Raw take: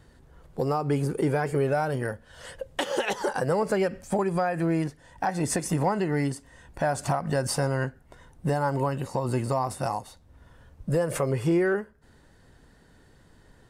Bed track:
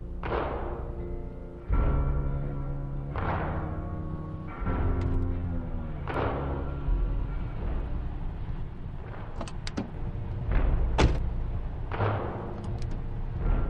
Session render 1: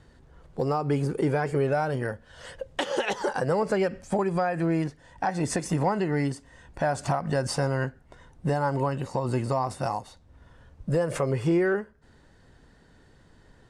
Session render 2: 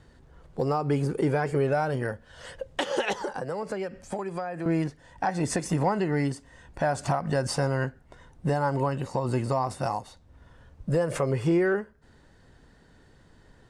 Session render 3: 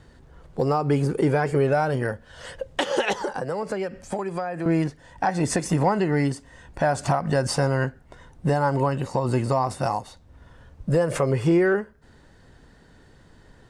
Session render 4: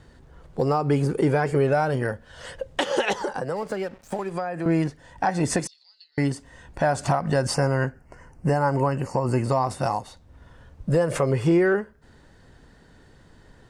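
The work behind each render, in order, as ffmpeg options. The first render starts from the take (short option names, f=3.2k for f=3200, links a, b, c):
-af "lowpass=7.7k"
-filter_complex "[0:a]asettb=1/sr,asplit=3[a][b][c];[a]atrim=end=3.144[d];[b]atrim=start=3.14:end=4.66,asetpts=PTS-STARTPTS,afade=t=in:d=0.004:c=qsin,afade=t=out:st=1.516:d=0.004:c=qsin,acrossover=split=270|1200[e][f][g];[e]acompressor=threshold=-42dB:ratio=4[h];[f]acompressor=threshold=-32dB:ratio=4[i];[g]acompressor=threshold=-44dB:ratio=4[j];[h][i][j]amix=inputs=3:normalize=0[k];[c]atrim=start=4.656[l];[d][k]acrossfade=d=0.004:c1=hsin:c2=qsin[m];[m][l]acrossfade=d=0.004:c1=qsin:c2=hsin"
-af "volume=4dB"
-filter_complex "[0:a]asettb=1/sr,asplit=3[a][b][c];[a]atrim=end=3.564[d];[b]atrim=start=3.56:end=4.34,asetpts=PTS-STARTPTS,afade=t=in:d=0.004:c=qsin,afade=t=out:st=0.776:d=0.004:c=qsin,aeval=exprs='sgn(val(0))*max(abs(val(0))-0.00531,0)':c=same[e];[c]atrim=start=4.336[f];[d][e]acrossfade=d=0.004:c1=hsin:c2=qsin[g];[g][f]acrossfade=d=0.004:c1=qsin:c2=hsin,asettb=1/sr,asplit=3[h][i][j];[h]atrim=end=5.674[k];[i]atrim=start=5.67:end=6.18,asetpts=PTS-STARTPTS,afade=t=in:d=0.004:c=qsin,afade=t=out:st=0.506:d=0.004:c=qsin,asuperpass=centerf=4200:order=4:qfactor=4.6[l];[j]atrim=start=6.176[m];[k][l]acrossfade=d=0.004:c1=hsin:c2=qsin[n];[n][m]acrossfade=d=0.004:c1=qsin:c2=hsin,asettb=1/sr,asplit=3[o][p][q];[o]atrim=end=7.544[r];[p]atrim=start=7.54:end=9.45,asetpts=PTS-STARTPTS,afade=t=in:d=0.004:c=qsin,afade=t=out:st=1.906:d=0.004:c=qsin,asuperstop=centerf=3600:order=4:qfactor=2.2[s];[q]atrim=start=9.446[t];[r][s]acrossfade=d=0.004:c1=hsin:c2=qsin[u];[u][t]acrossfade=d=0.004:c1=qsin:c2=hsin"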